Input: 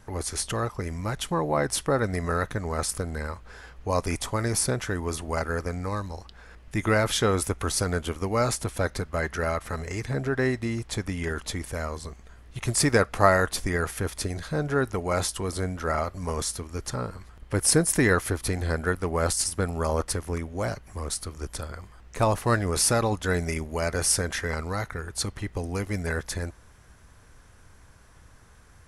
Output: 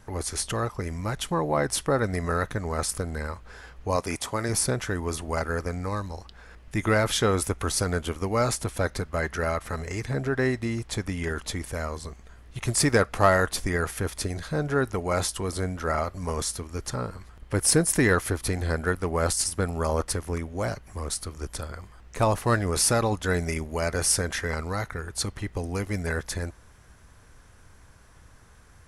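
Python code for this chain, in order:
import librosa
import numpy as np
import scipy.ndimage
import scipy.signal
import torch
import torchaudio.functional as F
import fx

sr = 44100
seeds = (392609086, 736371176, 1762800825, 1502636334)

p1 = fx.highpass(x, sr, hz=170.0, slope=6, at=(3.96, 4.49))
p2 = np.clip(p1, -10.0 ** (-14.0 / 20.0), 10.0 ** (-14.0 / 20.0))
p3 = p1 + (p2 * 10.0 ** (-5.5 / 20.0))
y = p3 * 10.0 ** (-3.5 / 20.0)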